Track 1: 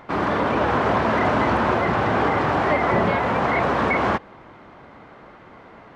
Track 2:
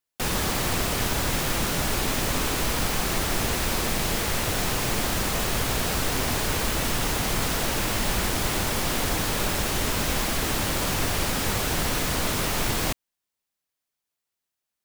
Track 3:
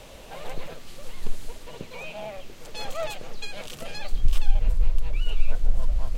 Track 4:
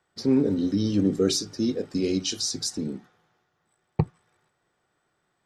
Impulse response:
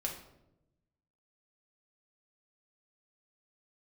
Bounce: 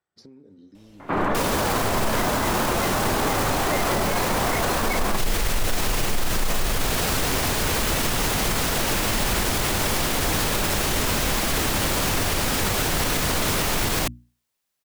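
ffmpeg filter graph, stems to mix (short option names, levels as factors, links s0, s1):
-filter_complex "[0:a]lowpass=2900,adelay=1000,volume=1.26[s0];[1:a]bandreject=f=60:t=h:w=6,bandreject=f=120:t=h:w=6,bandreject=f=180:t=h:w=6,bandreject=f=240:t=h:w=6,bandreject=f=300:t=h:w=6,acontrast=83,adelay=1150,volume=0.891[s1];[2:a]agate=range=0.178:threshold=0.0178:ratio=16:detection=peak,adelay=750,volume=1.26[s2];[3:a]acompressor=threshold=0.0224:ratio=8,volume=0.211[s3];[s0][s1][s2][s3]amix=inputs=4:normalize=0,alimiter=limit=0.211:level=0:latency=1"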